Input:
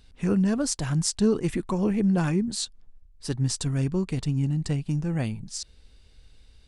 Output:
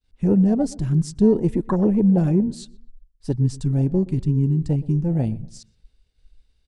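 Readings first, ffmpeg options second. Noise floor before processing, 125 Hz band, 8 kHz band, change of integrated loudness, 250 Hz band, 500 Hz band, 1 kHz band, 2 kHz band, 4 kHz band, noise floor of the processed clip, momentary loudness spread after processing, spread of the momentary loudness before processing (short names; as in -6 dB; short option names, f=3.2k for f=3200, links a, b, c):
-55 dBFS, +6.0 dB, -10.5 dB, +6.0 dB, +6.0 dB, +6.0 dB, +2.0 dB, n/a, under -10 dB, -64 dBFS, 10 LU, 11 LU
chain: -filter_complex "[0:a]agate=range=-33dB:threshold=-49dB:ratio=3:detection=peak,afwtdn=0.0447,asplit=2[a][b];[b]adelay=122,lowpass=f=1.7k:p=1,volume=-20dB,asplit=2[c][d];[d]adelay=122,lowpass=f=1.7k:p=1,volume=0.37,asplit=2[e][f];[f]adelay=122,lowpass=f=1.7k:p=1,volume=0.37[g];[c][e][g]amix=inputs=3:normalize=0[h];[a][h]amix=inputs=2:normalize=0,volume=6dB"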